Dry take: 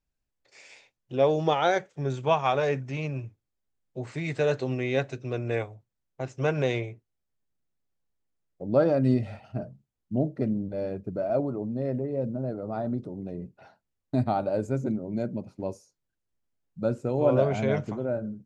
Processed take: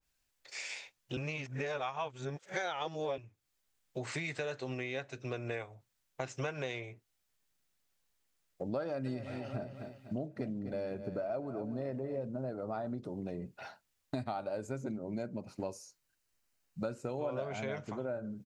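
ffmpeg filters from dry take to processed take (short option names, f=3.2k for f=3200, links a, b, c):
-filter_complex "[0:a]asplit=3[a][b][c];[a]afade=t=out:st=9.05:d=0.02[d];[b]aecho=1:1:249|498|747|996:0.2|0.0818|0.0335|0.0138,afade=t=in:st=9.05:d=0.02,afade=t=out:st=12.26:d=0.02[e];[c]afade=t=in:st=12.26:d=0.02[f];[d][e][f]amix=inputs=3:normalize=0,asettb=1/sr,asplit=3[g][h][i];[g]atrim=end=14.944[j];[h]atrim=start=14.94:end=17.05,asetpts=PTS-STARTPTS,afade=t=in:d=0.004:c=qsin,afade=t=out:st=2.106:d=0.004:c=qsin,bandreject=f=3.4k:w=11[k];[i]atrim=start=17.046[l];[j][k]acrossfade=d=0.004:c1=hsin:c2=qsin[m];[m][l]acrossfade=d=0.004:c1=qsin:c2=hsin,asplit=3[n][o][p];[n]atrim=end=1.172[q];[o]atrim=start=1.168:end=3.182,asetpts=PTS-STARTPTS,areverse[r];[p]atrim=start=3.178[s];[q][r]acrossfade=d=0.004:c1=hsin:c2=hsin[t];[t][s]acrossfade=d=0.004:c1=hsin:c2=hsin,tiltshelf=f=830:g=-7,acompressor=threshold=-40dB:ratio=6,adynamicequalizer=threshold=0.00126:dfrequency=1700:dqfactor=0.7:tfrequency=1700:tqfactor=0.7:attack=5:release=100:ratio=0.375:range=2.5:mode=cutabove:tftype=highshelf,volume=5dB"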